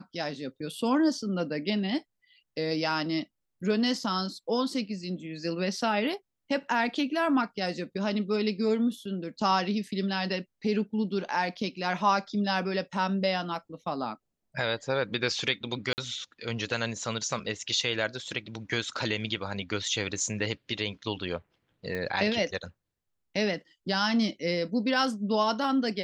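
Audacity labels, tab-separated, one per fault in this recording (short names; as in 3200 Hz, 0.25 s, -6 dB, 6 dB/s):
15.930000	15.980000	gap 49 ms
21.950000	21.950000	pop -21 dBFS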